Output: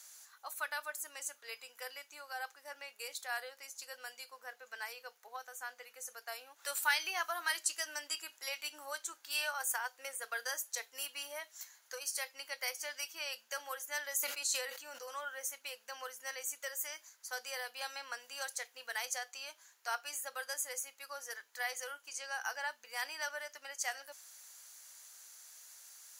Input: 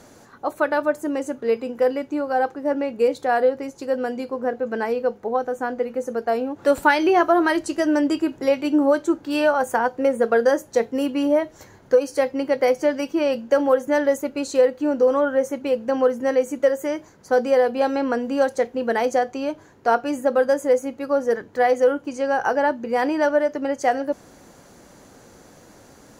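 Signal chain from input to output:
high-pass filter 1,000 Hz 12 dB per octave
first difference
0:14.14–0:15.06: level that may fall only so fast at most 60 dB per second
level +2 dB

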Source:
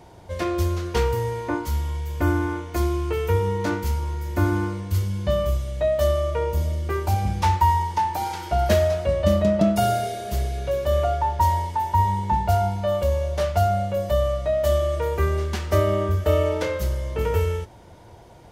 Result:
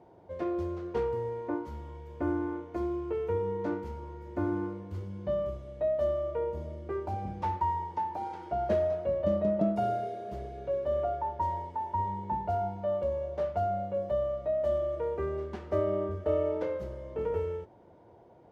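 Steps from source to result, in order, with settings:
resonant band-pass 410 Hz, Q 0.77
level −5.5 dB

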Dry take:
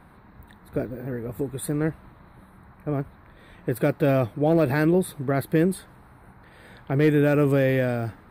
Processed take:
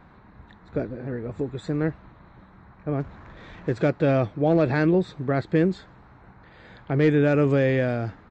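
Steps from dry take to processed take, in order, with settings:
0:03.00–0:03.90: mu-law and A-law mismatch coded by mu
downsampling to 16,000 Hz

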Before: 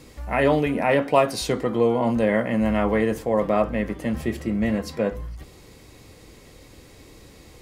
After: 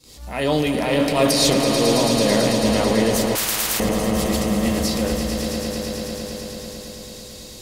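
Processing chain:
high shelf with overshoot 2,800 Hz +10.5 dB, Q 1.5
noise gate with hold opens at −33 dBFS
transient designer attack −9 dB, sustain +8 dB
echo that builds up and dies away 110 ms, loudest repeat 5, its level −9 dB
0:03.35–0:03.80: every bin compressed towards the loudest bin 10 to 1

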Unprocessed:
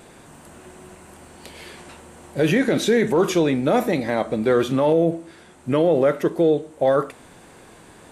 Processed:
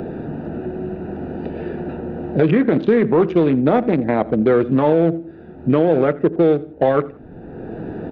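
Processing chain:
adaptive Wiener filter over 41 samples
Gaussian smoothing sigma 2.6 samples
notch filter 560 Hz, Q 12
on a send: repeating echo 84 ms, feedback 24%, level −22 dB
on the sum: multiband upward and downward compressor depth 70%
level +5 dB

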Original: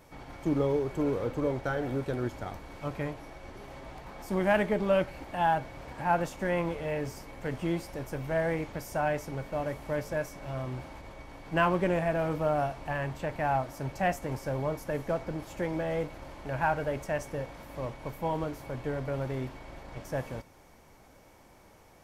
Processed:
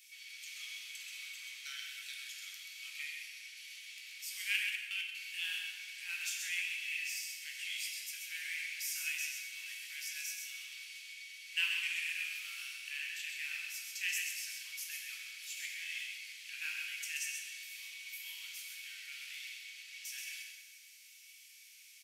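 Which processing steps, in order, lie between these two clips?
elliptic high-pass filter 2,400 Hz, stop band 70 dB
on a send: single-tap delay 131 ms −5.5 dB
0:04.56–0:05.15: on the sum: output level in coarse steps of 23 dB
dense smooth reverb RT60 1.5 s, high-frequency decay 0.8×, DRR 1 dB
level +6.5 dB

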